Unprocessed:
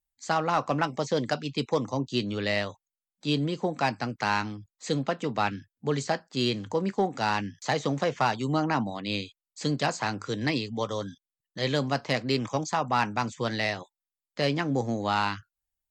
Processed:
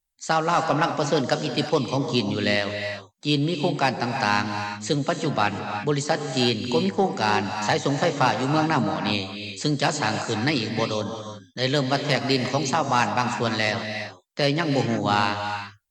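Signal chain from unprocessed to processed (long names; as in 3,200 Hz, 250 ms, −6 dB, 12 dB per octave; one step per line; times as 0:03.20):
parametric band 6,500 Hz +2.5 dB 2.1 octaves
reverb whose tail is shaped and stops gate 380 ms rising, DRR 6 dB
level +4 dB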